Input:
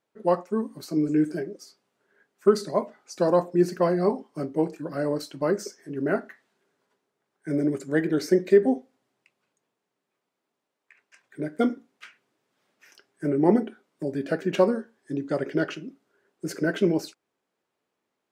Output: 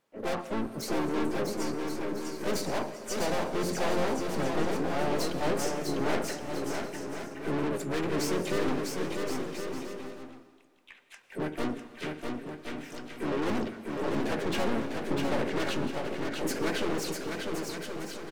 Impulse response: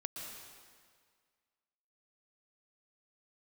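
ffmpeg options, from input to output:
-filter_complex "[0:a]aeval=exprs='(tanh(56.2*val(0)+0.25)-tanh(0.25))/56.2':channel_layout=same,asplit=4[link_01][link_02][link_03][link_04];[link_02]asetrate=22050,aresample=44100,atempo=2,volume=-13dB[link_05];[link_03]asetrate=55563,aresample=44100,atempo=0.793701,volume=-6dB[link_06];[link_04]asetrate=66075,aresample=44100,atempo=0.66742,volume=-7dB[link_07];[link_01][link_05][link_06][link_07]amix=inputs=4:normalize=0,aecho=1:1:650|1072|1347|1526|1642:0.631|0.398|0.251|0.158|0.1,asplit=2[link_08][link_09];[1:a]atrim=start_sample=2205[link_10];[link_09][link_10]afir=irnorm=-1:irlink=0,volume=-7.5dB[link_11];[link_08][link_11]amix=inputs=2:normalize=0,volume=2dB"

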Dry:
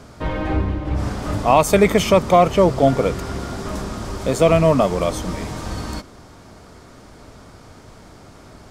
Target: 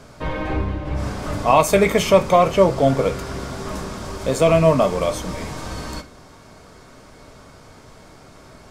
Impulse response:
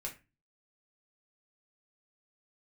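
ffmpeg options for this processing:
-filter_complex "[0:a]asplit=2[link_01][link_02];[1:a]atrim=start_sample=2205,lowshelf=frequency=330:gain=-9[link_03];[link_02][link_03]afir=irnorm=-1:irlink=0,volume=1.5dB[link_04];[link_01][link_04]amix=inputs=2:normalize=0,volume=-5dB"

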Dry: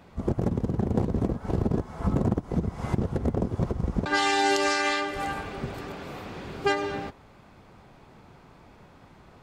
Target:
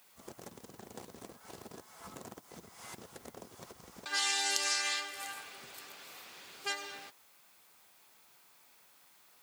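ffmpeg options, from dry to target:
ffmpeg -i in.wav -af "acrusher=bits=10:mix=0:aa=0.000001,aderivative,volume=3dB" out.wav

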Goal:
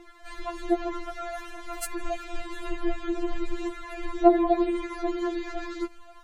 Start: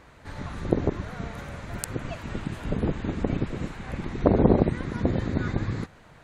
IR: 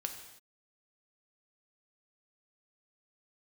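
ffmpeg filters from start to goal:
-af "aphaser=in_gain=1:out_gain=1:delay=4.6:decay=0.59:speed=0.63:type=triangular,afftfilt=real='re*4*eq(mod(b,16),0)':imag='im*4*eq(mod(b,16),0)':win_size=2048:overlap=0.75,volume=2dB"

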